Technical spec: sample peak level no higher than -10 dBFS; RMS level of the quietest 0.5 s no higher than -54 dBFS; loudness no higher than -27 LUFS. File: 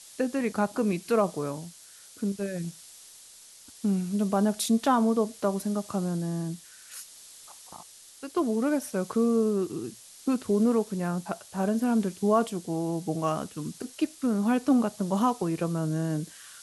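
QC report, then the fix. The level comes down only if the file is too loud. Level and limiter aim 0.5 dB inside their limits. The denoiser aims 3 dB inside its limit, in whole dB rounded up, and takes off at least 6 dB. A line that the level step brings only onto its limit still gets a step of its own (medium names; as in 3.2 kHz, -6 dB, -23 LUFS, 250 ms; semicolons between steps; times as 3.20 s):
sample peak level -11.5 dBFS: pass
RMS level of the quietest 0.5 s -51 dBFS: fail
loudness -28.0 LUFS: pass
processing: noise reduction 6 dB, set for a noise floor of -51 dBFS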